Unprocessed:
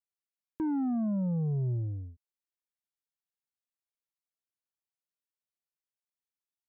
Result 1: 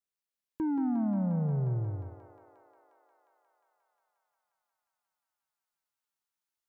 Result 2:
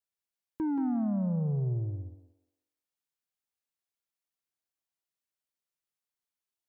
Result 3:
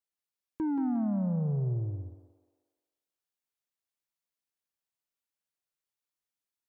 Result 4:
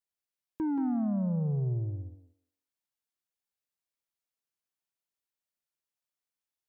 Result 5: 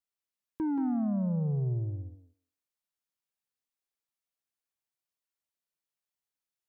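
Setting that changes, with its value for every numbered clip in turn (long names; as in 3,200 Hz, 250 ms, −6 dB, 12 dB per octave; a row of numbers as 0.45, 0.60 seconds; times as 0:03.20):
feedback echo with a high-pass in the loop, feedback: 87, 35, 53, 23, 15%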